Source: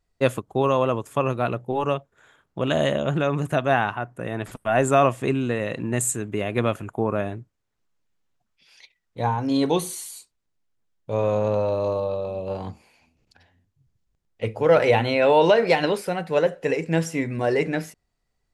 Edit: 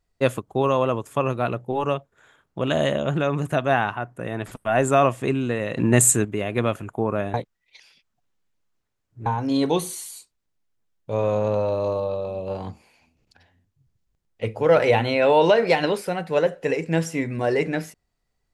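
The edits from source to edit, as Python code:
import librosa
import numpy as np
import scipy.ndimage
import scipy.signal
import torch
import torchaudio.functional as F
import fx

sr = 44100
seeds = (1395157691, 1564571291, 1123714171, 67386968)

y = fx.edit(x, sr, fx.clip_gain(start_s=5.77, length_s=0.48, db=8.0),
    fx.reverse_span(start_s=7.34, length_s=1.92), tone=tone)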